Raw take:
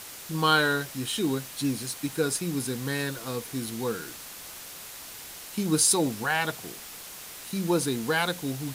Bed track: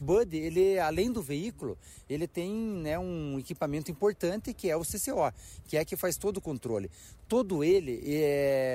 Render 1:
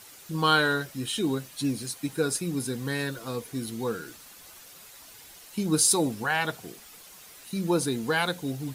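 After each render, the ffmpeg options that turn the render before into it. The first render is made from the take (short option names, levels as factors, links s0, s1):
-af "afftdn=nr=9:nf=-43"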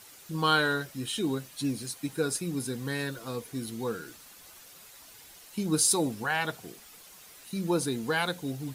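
-af "volume=0.75"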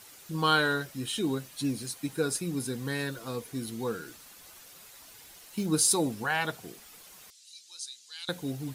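-filter_complex "[0:a]asettb=1/sr,asplit=3[s0][s1][s2];[s0]atrim=end=4.674[s3];[s1]atrim=start=4.67:end=5.66,asetpts=PTS-STARTPTS,afade=t=in:d=0.004:c=qsin,afade=t=out:st=0.986:d=0.004:c=qsin,acrusher=bits=6:mode=log:mix=0:aa=0.000001[s4];[s2]atrim=start=5.656[s5];[s3][s4]acrossfade=d=0.004:c1=hsin:c2=qsin[s6];[s6][s5]acrossfade=d=0.004:c1=qsin:c2=hsin,asettb=1/sr,asplit=3[s7][s8][s9];[s7]atrim=end=7.304[s10];[s8]atrim=start=7.3:end=8.29,asetpts=PTS-STARTPTS,afade=t=in:d=0.004:c=qsin,afade=t=out:st=0.986:d=0.004:c=qsin,asuperpass=centerf=5500:order=4:qfactor=1.3[s11];[s9]atrim=start=8.286[s12];[s10][s11]acrossfade=d=0.004:c1=hsin:c2=qsin[s13];[s13][s12]acrossfade=d=0.004:c1=qsin:c2=hsin"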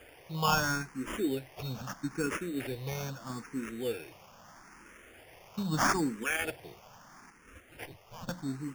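-filter_complex "[0:a]acrusher=samples=11:mix=1:aa=0.000001,asplit=2[s0][s1];[s1]afreqshift=0.78[s2];[s0][s2]amix=inputs=2:normalize=1"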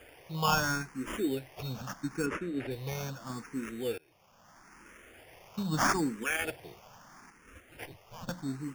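-filter_complex "[0:a]asplit=3[s0][s1][s2];[s0]afade=t=out:st=2.25:d=0.02[s3];[s1]aemphasis=mode=reproduction:type=75fm,afade=t=in:st=2.25:d=0.02,afade=t=out:st=2.7:d=0.02[s4];[s2]afade=t=in:st=2.7:d=0.02[s5];[s3][s4][s5]amix=inputs=3:normalize=0,asplit=2[s6][s7];[s6]atrim=end=3.98,asetpts=PTS-STARTPTS,afade=t=out:st=3.976:d=0.004:c=hsin:silence=0.0668344[s8];[s7]atrim=start=3.98,asetpts=PTS-STARTPTS,afade=t=in:d=0.91:silence=0.0668344[s9];[s8][s9]concat=n=2:v=0:a=1"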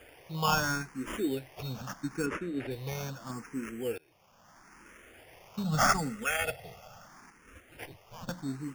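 -filter_complex "[0:a]asettb=1/sr,asplit=3[s0][s1][s2];[s0]atrim=end=3.314[s3];[s1]atrim=start=3.31:end=3.96,asetpts=PTS-STARTPTS,afade=t=in:d=0.004:c=qsin,afade=t=out:st=0.646:d=0.004:c=qsin,asuperstop=centerf=3900:order=12:qfactor=2.8[s4];[s2]atrim=start=3.956[s5];[s3][s4]acrossfade=d=0.004:c1=hsin:c2=qsin[s6];[s6][s5]acrossfade=d=0.004:c1=qsin:c2=hsin,asettb=1/sr,asplit=3[s7][s8][s9];[s7]atrim=end=5.644[s10];[s8]atrim=start=5.64:end=7.07,asetpts=PTS-STARTPTS,afade=t=in:d=0.004:c=qsin,afade=t=out:st=1.426:d=0.004:c=qsin,aecho=1:1:1.5:0.96,atrim=end_sample=63063[s11];[s9]atrim=start=7.066[s12];[s10][s11]acrossfade=d=0.004:c1=hsin:c2=qsin[s13];[s13][s12]acrossfade=d=0.004:c1=qsin:c2=hsin"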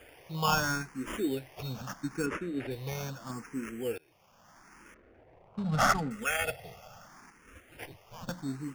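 -filter_complex "[0:a]asettb=1/sr,asplit=3[s0][s1][s2];[s0]atrim=end=4.944[s3];[s1]atrim=start=4.94:end=6.11,asetpts=PTS-STARTPTS,afade=t=in:d=0.004:c=qsin,afade=t=out:st=1.166:d=0.004:c=qsin,adynamicsmooth=sensitivity=7.5:basefreq=760[s4];[s2]atrim=start=6.106[s5];[s3][s4]acrossfade=d=0.004:c1=hsin:c2=qsin[s6];[s6][s5]acrossfade=d=0.004:c1=qsin:c2=hsin"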